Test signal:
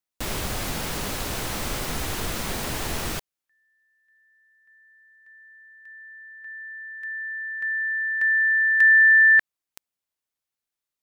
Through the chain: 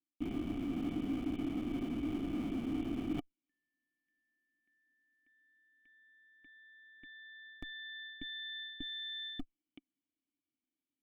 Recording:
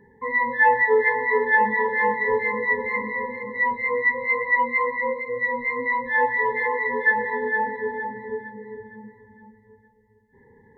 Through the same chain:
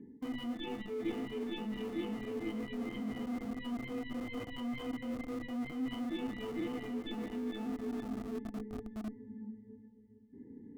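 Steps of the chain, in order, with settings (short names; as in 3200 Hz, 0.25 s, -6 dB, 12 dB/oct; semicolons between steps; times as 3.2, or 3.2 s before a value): tracing distortion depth 0.25 ms; vocal tract filter i; in parallel at -7.5 dB: Schmitt trigger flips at -46 dBFS; on the sum: added harmonics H 2 -30 dB, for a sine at -22.5 dBFS; reverse; compressor 6:1, threshold -49 dBFS; reverse; small resonant body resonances 310/710/1200 Hz, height 12 dB, ringing for 30 ms; gain +7 dB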